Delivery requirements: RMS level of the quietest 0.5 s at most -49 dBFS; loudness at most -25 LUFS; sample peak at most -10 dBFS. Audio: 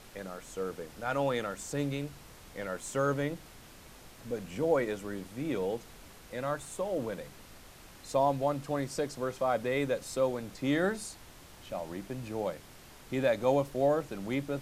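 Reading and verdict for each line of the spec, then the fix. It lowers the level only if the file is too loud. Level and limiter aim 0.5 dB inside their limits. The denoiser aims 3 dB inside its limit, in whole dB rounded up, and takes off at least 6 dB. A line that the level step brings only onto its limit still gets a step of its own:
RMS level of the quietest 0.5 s -52 dBFS: pass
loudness -33.0 LUFS: pass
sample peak -15.5 dBFS: pass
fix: none needed

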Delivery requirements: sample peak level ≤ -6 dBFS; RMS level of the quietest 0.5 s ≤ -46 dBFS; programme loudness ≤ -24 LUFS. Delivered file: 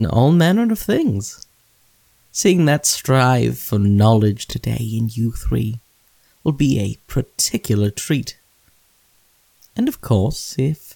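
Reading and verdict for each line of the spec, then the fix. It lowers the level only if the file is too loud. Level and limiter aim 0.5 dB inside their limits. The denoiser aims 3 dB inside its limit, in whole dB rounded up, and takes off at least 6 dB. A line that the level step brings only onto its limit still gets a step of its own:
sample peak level -4.0 dBFS: fail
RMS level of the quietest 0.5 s -58 dBFS: pass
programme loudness -18.0 LUFS: fail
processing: trim -6.5 dB

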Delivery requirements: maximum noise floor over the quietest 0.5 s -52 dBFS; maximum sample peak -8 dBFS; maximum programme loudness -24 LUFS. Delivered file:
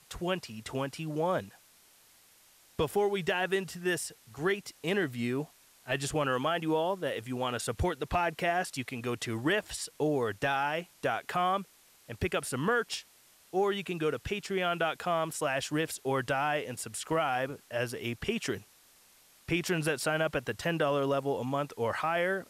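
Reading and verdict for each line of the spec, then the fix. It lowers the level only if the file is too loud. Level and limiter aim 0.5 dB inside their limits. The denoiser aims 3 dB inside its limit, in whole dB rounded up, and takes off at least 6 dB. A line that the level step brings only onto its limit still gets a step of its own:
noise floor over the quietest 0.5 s -61 dBFS: pass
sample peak -19.0 dBFS: pass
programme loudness -32.0 LUFS: pass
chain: none needed

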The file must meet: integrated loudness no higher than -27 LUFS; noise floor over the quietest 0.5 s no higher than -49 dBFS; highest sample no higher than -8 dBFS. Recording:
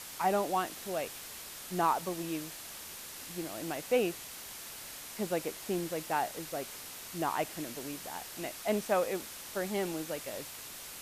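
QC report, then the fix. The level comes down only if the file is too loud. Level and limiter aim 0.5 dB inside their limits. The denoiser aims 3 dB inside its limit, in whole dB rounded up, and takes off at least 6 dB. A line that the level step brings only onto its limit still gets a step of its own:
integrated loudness -35.5 LUFS: pass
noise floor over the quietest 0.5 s -46 dBFS: fail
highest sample -16.5 dBFS: pass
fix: noise reduction 6 dB, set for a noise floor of -46 dBFS

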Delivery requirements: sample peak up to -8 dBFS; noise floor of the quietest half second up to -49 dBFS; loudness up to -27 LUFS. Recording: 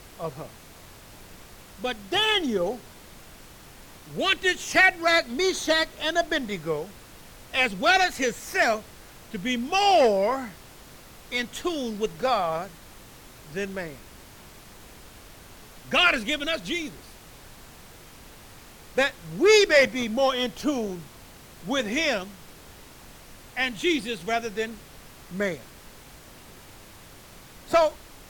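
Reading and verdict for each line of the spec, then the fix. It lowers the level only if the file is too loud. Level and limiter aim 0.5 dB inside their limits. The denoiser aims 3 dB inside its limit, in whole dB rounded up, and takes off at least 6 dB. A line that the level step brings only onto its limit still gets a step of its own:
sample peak -7.0 dBFS: fail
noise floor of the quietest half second -48 dBFS: fail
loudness -24.0 LUFS: fail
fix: trim -3.5 dB

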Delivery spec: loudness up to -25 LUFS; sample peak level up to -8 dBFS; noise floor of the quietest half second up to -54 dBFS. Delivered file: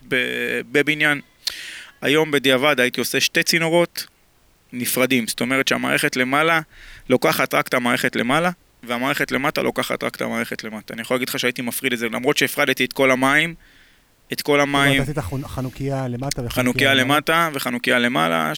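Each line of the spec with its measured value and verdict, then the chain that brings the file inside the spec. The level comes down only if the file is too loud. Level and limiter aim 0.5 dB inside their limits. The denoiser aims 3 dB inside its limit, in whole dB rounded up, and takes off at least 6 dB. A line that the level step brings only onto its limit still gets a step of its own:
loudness -19.0 LUFS: fail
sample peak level -4.0 dBFS: fail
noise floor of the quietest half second -57 dBFS: pass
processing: trim -6.5 dB

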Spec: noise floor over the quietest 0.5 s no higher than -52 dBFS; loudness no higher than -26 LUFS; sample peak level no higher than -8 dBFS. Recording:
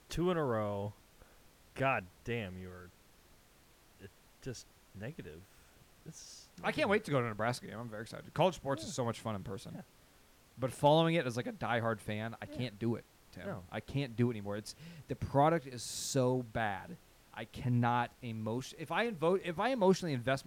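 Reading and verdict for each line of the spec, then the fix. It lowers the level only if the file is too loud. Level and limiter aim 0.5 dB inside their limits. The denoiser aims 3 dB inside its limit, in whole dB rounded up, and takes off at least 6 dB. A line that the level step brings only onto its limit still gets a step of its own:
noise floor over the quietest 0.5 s -64 dBFS: pass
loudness -35.5 LUFS: pass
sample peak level -16.0 dBFS: pass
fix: none needed

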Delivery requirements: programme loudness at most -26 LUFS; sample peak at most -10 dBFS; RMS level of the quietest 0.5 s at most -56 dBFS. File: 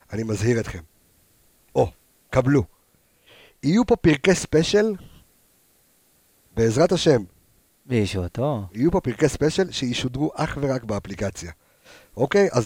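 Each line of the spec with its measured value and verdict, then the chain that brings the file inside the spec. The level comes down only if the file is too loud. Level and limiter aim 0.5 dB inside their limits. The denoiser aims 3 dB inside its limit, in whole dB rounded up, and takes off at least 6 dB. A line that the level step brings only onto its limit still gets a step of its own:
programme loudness -22.0 LUFS: fail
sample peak -5.0 dBFS: fail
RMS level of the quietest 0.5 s -62 dBFS: pass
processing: trim -4.5 dB; peak limiter -10.5 dBFS

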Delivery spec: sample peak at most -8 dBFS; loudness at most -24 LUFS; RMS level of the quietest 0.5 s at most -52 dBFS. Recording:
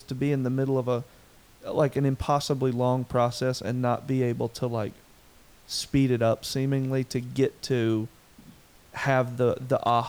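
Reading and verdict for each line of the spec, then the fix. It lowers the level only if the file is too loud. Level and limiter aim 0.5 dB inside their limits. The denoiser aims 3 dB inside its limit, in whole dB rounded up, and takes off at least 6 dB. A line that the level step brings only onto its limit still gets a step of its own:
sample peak -10.5 dBFS: pass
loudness -27.0 LUFS: pass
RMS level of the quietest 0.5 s -55 dBFS: pass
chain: none needed

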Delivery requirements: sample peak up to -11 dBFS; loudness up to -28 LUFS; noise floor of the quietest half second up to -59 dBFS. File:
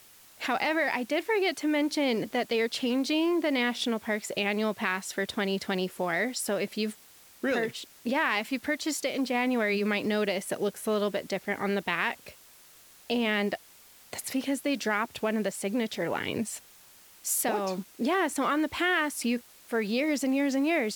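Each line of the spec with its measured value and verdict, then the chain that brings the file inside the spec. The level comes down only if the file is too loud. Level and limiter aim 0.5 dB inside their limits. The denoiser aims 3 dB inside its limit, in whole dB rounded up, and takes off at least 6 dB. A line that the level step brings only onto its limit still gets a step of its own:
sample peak -13.0 dBFS: pass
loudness -29.0 LUFS: pass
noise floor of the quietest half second -55 dBFS: fail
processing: noise reduction 7 dB, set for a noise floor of -55 dBFS

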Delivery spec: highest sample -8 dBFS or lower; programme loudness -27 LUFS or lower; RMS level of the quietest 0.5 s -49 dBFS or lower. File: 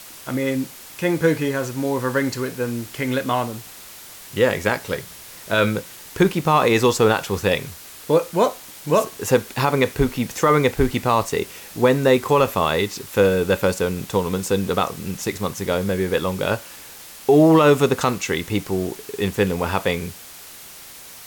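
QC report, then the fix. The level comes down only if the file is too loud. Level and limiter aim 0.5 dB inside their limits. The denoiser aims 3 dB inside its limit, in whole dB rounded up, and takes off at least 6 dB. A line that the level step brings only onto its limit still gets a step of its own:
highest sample -5.5 dBFS: fail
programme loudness -20.5 LUFS: fail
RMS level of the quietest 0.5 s -41 dBFS: fail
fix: noise reduction 6 dB, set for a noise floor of -41 dBFS; trim -7 dB

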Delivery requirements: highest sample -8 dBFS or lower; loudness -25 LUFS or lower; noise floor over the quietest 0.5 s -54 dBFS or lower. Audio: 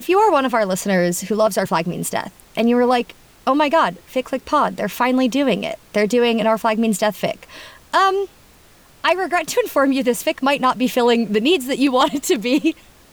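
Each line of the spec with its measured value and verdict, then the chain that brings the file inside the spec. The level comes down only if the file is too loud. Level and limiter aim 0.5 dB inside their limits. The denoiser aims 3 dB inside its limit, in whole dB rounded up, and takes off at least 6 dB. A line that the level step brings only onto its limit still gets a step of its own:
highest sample -5.0 dBFS: fail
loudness -18.5 LUFS: fail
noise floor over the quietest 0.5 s -49 dBFS: fail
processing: trim -7 dB

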